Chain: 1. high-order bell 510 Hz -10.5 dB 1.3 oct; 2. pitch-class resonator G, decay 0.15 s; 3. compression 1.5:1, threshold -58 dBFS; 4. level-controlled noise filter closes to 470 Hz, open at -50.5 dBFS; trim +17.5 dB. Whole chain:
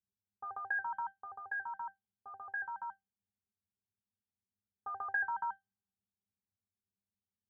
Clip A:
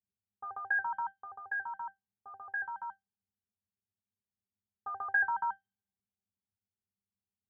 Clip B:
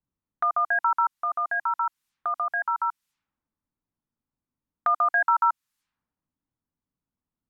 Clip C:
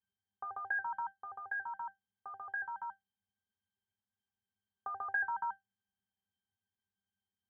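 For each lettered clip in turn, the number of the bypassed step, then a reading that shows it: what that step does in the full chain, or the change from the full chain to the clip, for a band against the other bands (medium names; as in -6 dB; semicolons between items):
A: 3, momentary loudness spread change +3 LU; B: 2, crest factor change -3.5 dB; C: 4, momentary loudness spread change -1 LU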